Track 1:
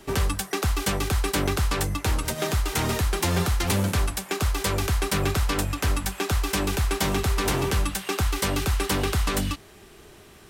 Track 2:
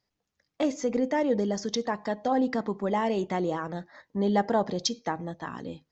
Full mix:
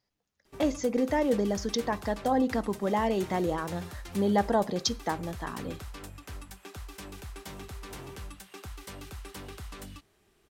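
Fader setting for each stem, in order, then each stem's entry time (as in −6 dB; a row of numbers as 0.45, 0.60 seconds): −18.5, −0.5 decibels; 0.45, 0.00 seconds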